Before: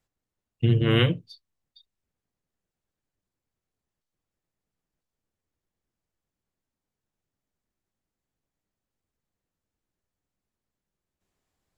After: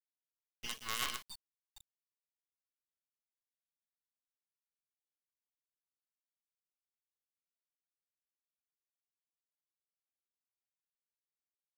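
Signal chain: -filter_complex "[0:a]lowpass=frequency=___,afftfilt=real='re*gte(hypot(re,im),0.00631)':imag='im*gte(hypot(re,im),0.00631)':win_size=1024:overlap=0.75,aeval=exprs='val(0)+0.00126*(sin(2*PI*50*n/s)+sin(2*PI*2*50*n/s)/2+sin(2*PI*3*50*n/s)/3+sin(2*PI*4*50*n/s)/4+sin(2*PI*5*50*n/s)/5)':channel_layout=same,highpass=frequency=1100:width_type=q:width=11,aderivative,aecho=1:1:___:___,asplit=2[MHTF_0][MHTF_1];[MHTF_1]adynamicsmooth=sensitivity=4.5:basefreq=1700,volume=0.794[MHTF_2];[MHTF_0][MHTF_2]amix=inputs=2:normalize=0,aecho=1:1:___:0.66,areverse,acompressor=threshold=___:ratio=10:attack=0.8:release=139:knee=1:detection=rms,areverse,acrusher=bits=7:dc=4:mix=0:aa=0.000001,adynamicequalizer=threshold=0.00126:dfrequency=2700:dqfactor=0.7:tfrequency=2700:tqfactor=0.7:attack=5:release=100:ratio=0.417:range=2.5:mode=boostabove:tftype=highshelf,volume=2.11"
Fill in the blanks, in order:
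3700, 131, 0.119, 4.7, 0.0126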